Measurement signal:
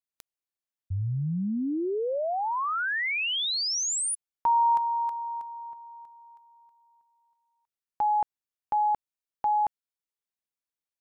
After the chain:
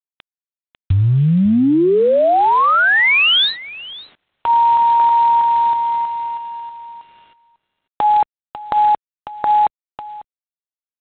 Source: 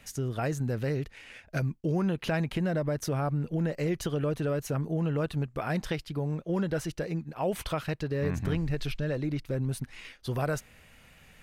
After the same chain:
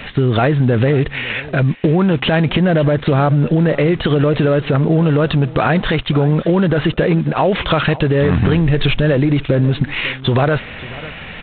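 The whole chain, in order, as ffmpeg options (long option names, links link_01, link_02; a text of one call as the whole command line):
ffmpeg -i in.wav -af "lowshelf=frequency=100:gain=-6.5,acompressor=threshold=-40dB:ratio=10:attack=16:release=36:knee=6:detection=peak,acrusher=bits=10:mix=0:aa=0.000001,aecho=1:1:547:0.112,alimiter=level_in=29.5dB:limit=-1dB:release=50:level=0:latency=1,volume=-3dB" -ar 8000 -c:a adpcm_g726 -b:a 24k out.wav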